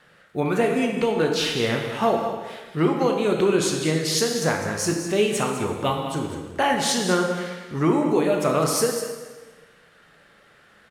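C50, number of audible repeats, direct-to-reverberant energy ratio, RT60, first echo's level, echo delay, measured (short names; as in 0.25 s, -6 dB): 3.5 dB, 1, 1.0 dB, 1.3 s, -10.5 dB, 0.202 s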